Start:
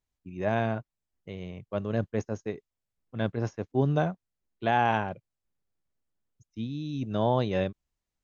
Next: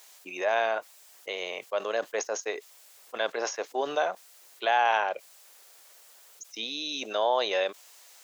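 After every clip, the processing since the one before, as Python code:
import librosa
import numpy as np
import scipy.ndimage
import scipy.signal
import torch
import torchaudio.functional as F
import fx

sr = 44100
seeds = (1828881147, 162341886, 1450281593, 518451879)

y = scipy.signal.sosfilt(scipy.signal.butter(4, 510.0, 'highpass', fs=sr, output='sos'), x)
y = fx.high_shelf(y, sr, hz=3100.0, db=8.5)
y = fx.env_flatten(y, sr, amount_pct=50)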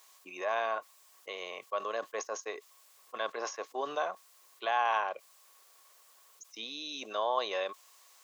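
y = fx.small_body(x, sr, hz=(1100.0,), ring_ms=60, db=17)
y = y * 10.0 ** (-7.0 / 20.0)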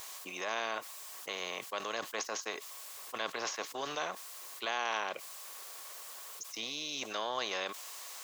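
y = fx.spectral_comp(x, sr, ratio=2.0)
y = y * 10.0 ** (-3.0 / 20.0)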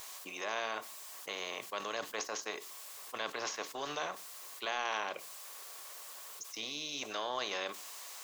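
y = fx.room_shoebox(x, sr, seeds[0], volume_m3=230.0, walls='furnished', distance_m=0.37)
y = y * 10.0 ** (-1.5 / 20.0)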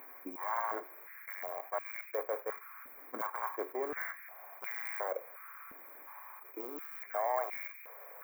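y = fx.bit_reversed(x, sr, seeds[1], block=16)
y = fx.brickwall_bandstop(y, sr, low_hz=2500.0, high_hz=13000.0)
y = fx.filter_held_highpass(y, sr, hz=2.8, low_hz=270.0, high_hz=2400.0)
y = y * 10.0 ** (-1.0 / 20.0)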